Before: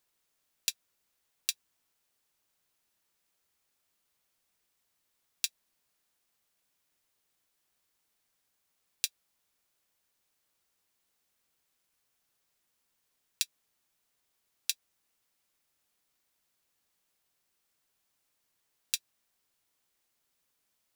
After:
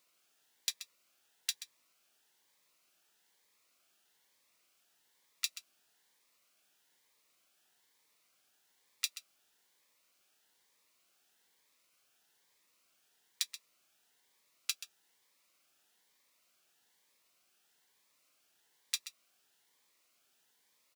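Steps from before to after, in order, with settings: HPF 580 Hz 6 dB/oct; high shelf 5400 Hz -8 dB; limiter -20.5 dBFS, peak gain reduction 10 dB; echo 0.13 s -13 dB; harmoniser -12 st -16 dB; cascading phaser rising 1.1 Hz; gain +10 dB

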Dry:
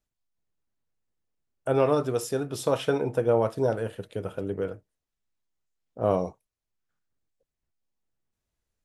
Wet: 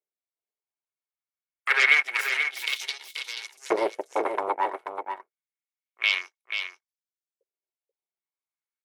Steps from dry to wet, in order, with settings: 4.07–4.55 low shelf 320 Hz +5.5 dB; added harmonics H 7 -15 dB, 8 -8 dB, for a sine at -10 dBFS; LFO high-pass saw up 0.27 Hz 500–7000 Hz; small resonant body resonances 380/2200 Hz, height 15 dB, ringing for 35 ms; on a send: echo 0.484 s -7 dB; on the sum: gain -3 dB

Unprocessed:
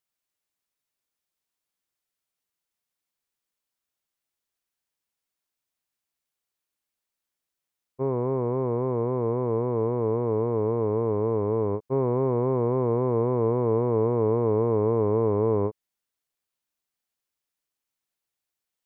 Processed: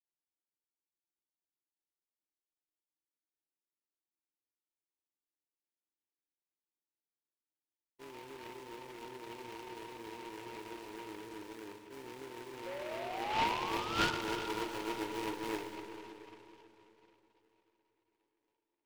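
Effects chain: gate -17 dBFS, range -38 dB; thin delay 0.987 s, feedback 58%, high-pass 1400 Hz, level -20 dB; sample-rate reducer 1400 Hz, jitter 0%; 11.16–12.55 bell 930 Hz -4 dB; 12.66–14.11 painted sound rise 530–1500 Hz -53 dBFS; tone controls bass -8 dB, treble +4 dB; small resonant body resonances 320/910/1400 Hz, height 15 dB, ringing for 40 ms; on a send at -5 dB: reverb RT60 3.6 s, pre-delay 35 ms; on the sum: noise-modulated delay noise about 1500 Hz, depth 0.11 ms; gain +9 dB

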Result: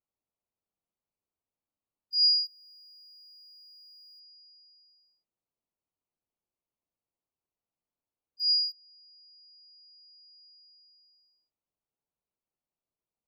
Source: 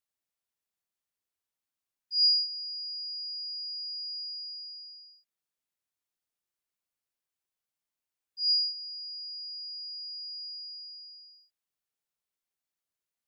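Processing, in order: Wiener smoothing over 25 samples; in parallel at -1.5 dB: compressor, threshold -42 dBFS, peak gain reduction 19 dB

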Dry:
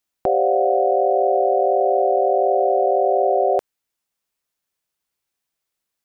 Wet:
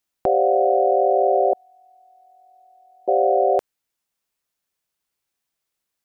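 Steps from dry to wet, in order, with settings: 1.53–3.08 inverse Chebyshev band-stop 290–660 Hz, stop band 50 dB

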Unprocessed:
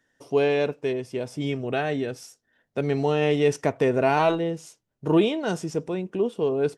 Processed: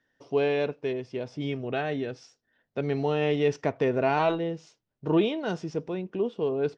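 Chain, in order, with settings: LPF 5300 Hz 24 dB/oct; gain -3.5 dB

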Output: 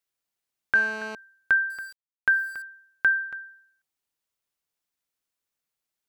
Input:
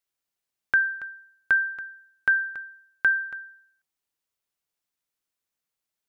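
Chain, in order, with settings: 0.75–1.15 GSM buzz -37 dBFS; 1.7–2.62 sample gate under -42 dBFS

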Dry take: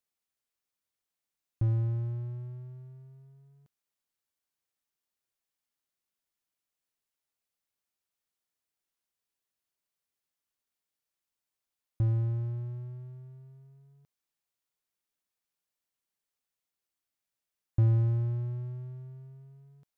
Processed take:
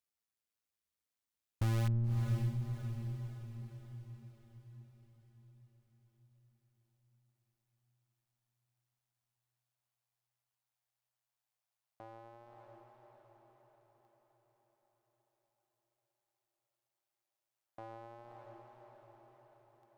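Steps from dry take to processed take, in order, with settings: high-pass sweep 61 Hz -> 730 Hz, 1.71–4.7; in parallel at -8 dB: wrapped overs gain 22 dB; on the sum: AM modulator 110 Hz, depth 40%; diffused feedback echo 0.576 s, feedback 51%, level -6.5 dB; gain -5 dB

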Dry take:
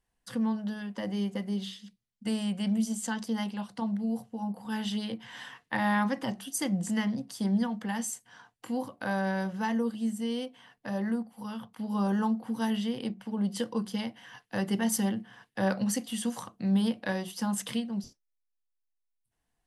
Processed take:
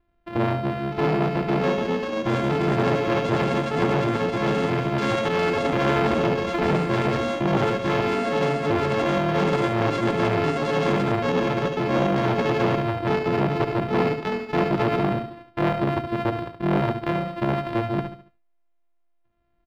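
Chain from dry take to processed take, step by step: sample sorter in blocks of 128 samples; in parallel at +1.5 dB: vocal rider 0.5 s; on the sum: modulation noise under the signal 21 dB; air absorption 440 m; echoes that change speed 0.706 s, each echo +4 st, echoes 3; feedback echo 71 ms, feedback 36%, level -8 dB; core saturation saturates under 720 Hz; gain +3.5 dB

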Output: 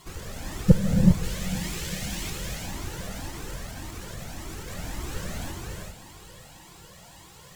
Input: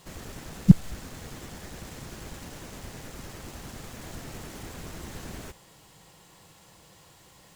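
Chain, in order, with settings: 1.23–2.3 resonant high shelf 1800 Hz +6 dB, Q 1.5; 3.29–4.68 level quantiser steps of 11 dB; sine folder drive 3 dB, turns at -1 dBFS; diffused feedback echo 0.494 s, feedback 48%, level -14.5 dB; non-linear reverb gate 0.43 s rising, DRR 0 dB; cascading flanger rising 1.8 Hz

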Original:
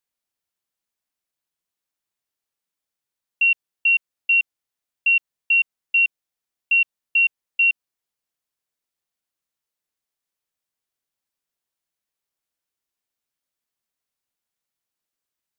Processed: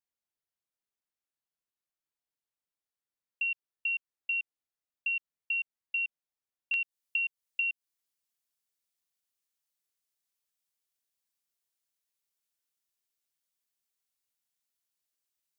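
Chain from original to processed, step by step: high shelf 2500 Hz -3 dB, from 6.74 s +9.5 dB; compressor 12:1, threshold -20 dBFS, peak gain reduction 11 dB; gain -8.5 dB

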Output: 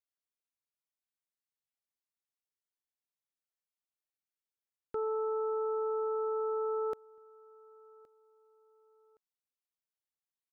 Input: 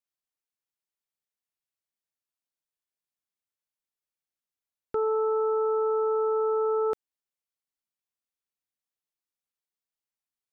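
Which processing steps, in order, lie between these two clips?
feedback echo 1.118 s, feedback 33%, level -24 dB; gain -7.5 dB

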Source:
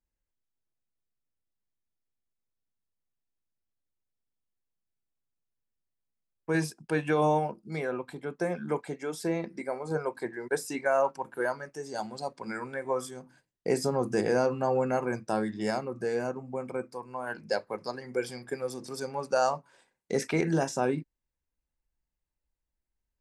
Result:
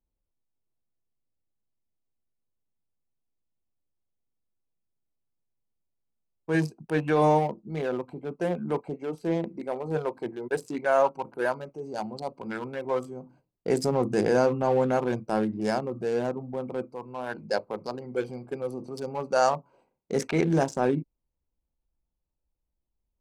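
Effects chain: Wiener smoothing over 25 samples; transient shaper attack -4 dB, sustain +1 dB; gain +4.5 dB

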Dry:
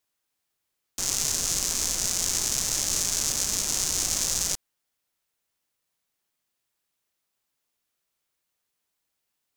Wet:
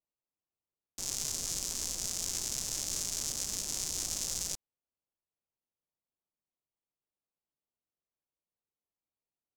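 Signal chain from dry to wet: Wiener smoothing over 25 samples; gain -8.5 dB

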